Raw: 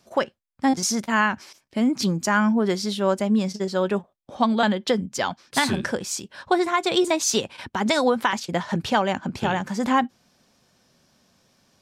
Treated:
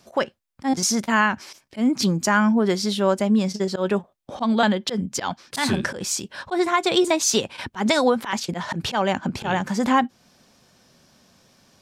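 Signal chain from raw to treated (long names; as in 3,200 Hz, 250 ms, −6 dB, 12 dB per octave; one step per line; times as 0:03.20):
volume swells 102 ms
in parallel at −1.5 dB: downward compressor, threshold −30 dBFS, peak gain reduction 14.5 dB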